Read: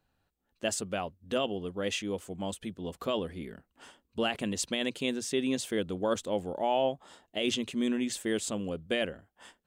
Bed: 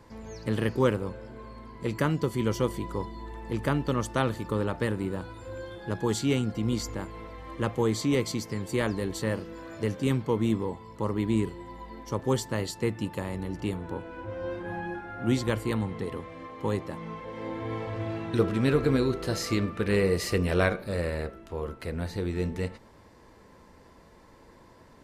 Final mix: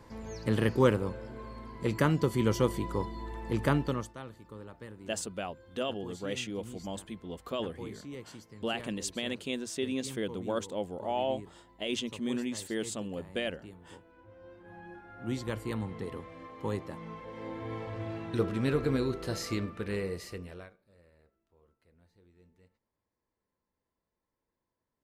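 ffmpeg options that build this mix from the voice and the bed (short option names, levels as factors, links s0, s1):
-filter_complex "[0:a]adelay=4450,volume=0.668[s0];[1:a]volume=4.47,afade=t=out:st=3.74:d=0.4:silence=0.125893,afade=t=in:st=14.57:d=1.41:silence=0.223872,afade=t=out:st=19.41:d=1.31:silence=0.0398107[s1];[s0][s1]amix=inputs=2:normalize=0"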